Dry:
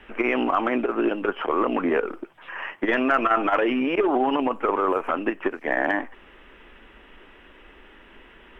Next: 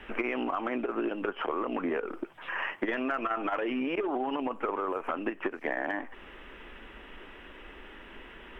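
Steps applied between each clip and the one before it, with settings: compression 6:1, threshold -30 dBFS, peak gain reduction 13.5 dB; trim +1.5 dB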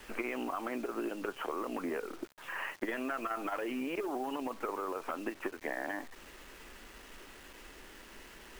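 bit crusher 8-bit; trim -5.5 dB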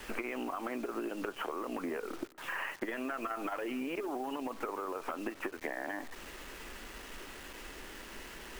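compression, threshold -39 dBFS, peak gain reduction 8.5 dB; feedback echo behind a low-pass 213 ms, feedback 31%, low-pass 1.7 kHz, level -22.5 dB; trim +5 dB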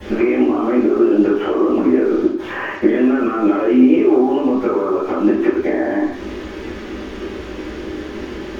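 reverberation RT60 0.55 s, pre-delay 3 ms, DRR -14 dB; trim -1 dB

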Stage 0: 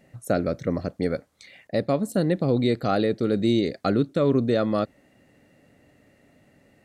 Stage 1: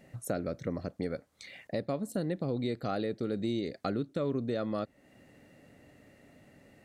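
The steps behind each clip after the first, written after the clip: compression 2:1, threshold -38 dBFS, peak gain reduction 12 dB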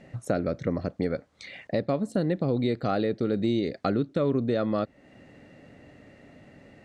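distance through air 86 m; trim +7 dB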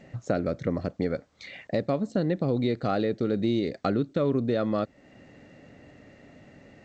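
G.722 64 kbps 16 kHz

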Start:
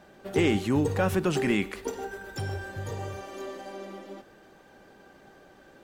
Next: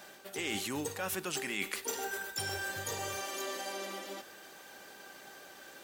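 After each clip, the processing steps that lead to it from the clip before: tilt EQ +4 dB/octave; reverse; compression 6:1, threshold -36 dBFS, peak gain reduction 14.5 dB; reverse; trim +2.5 dB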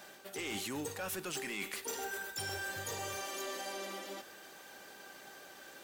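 saturation -31 dBFS, distortion -15 dB; trim -1 dB

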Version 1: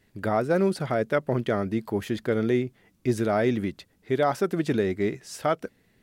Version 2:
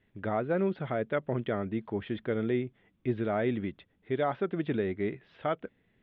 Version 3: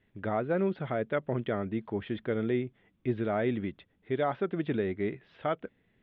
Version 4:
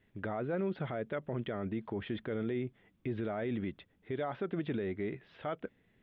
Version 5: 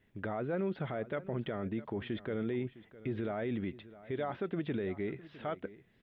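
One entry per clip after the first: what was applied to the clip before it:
Chebyshev low-pass 3.5 kHz, order 5; trim -5.5 dB
no audible change
peak limiter -26.5 dBFS, peak gain reduction 8.5 dB
delay 658 ms -17.5 dB

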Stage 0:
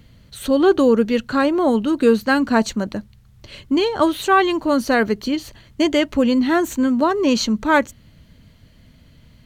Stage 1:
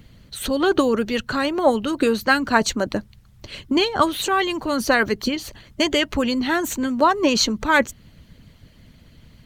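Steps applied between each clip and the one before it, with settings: harmonic-percussive split harmonic -11 dB; trim +5 dB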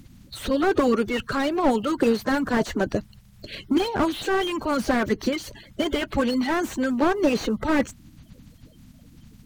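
coarse spectral quantiser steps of 30 dB; slew-rate limiter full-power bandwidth 90 Hz

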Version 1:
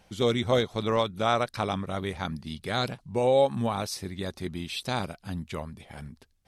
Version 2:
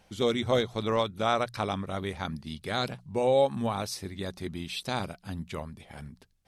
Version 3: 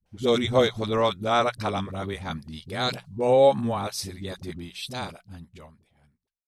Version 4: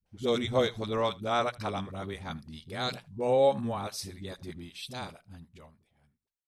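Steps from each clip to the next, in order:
hum notches 60/120/180 Hz; trim -1.5 dB
fade out at the end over 2.12 s; phase dispersion highs, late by 60 ms, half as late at 340 Hz; three bands expanded up and down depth 40%; trim +3.5 dB
delay 78 ms -23 dB; trim -6 dB

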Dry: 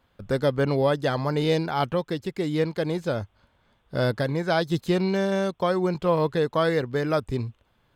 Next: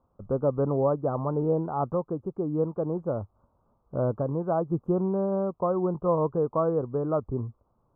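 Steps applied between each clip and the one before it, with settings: elliptic low-pass 1.2 kHz, stop band 40 dB; trim -2 dB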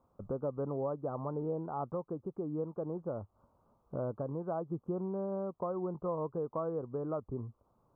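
bass shelf 82 Hz -7.5 dB; compression 2:1, threshold -41 dBFS, peak gain reduction 11.5 dB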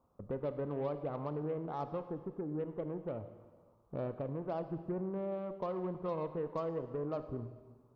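Chebyshev shaper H 8 -29 dB, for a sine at -24.5 dBFS; reverberation RT60 1.5 s, pre-delay 22 ms, DRR 9.5 dB; trim -2 dB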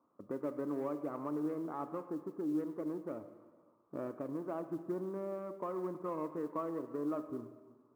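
cabinet simulation 250–2200 Hz, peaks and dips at 300 Hz +9 dB, 490 Hz -5 dB, 770 Hz -6 dB, 1.2 kHz +4 dB; modulation noise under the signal 34 dB

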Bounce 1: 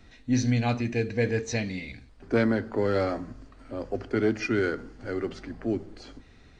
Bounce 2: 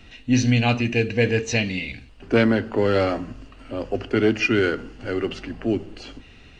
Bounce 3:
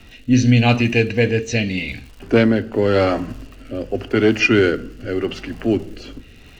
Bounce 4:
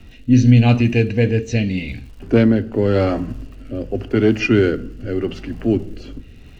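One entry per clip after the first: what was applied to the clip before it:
peaking EQ 2.8 kHz +15 dB 0.28 oct; trim +5.5 dB
crackle 220 per s -41 dBFS; rotary cabinet horn 0.85 Hz; trim +6 dB
bass shelf 400 Hz +10 dB; trim -5.5 dB

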